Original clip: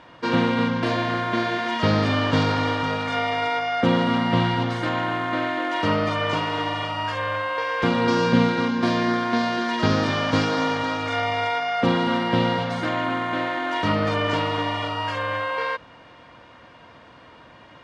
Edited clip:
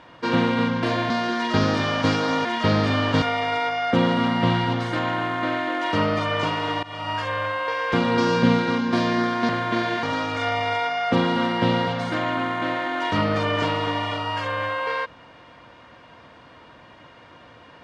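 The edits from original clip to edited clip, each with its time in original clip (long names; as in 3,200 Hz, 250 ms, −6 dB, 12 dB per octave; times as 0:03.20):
0:01.10–0:01.64: swap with 0:09.39–0:10.74
0:02.41–0:03.12: remove
0:06.73–0:07.00: fade in, from −18.5 dB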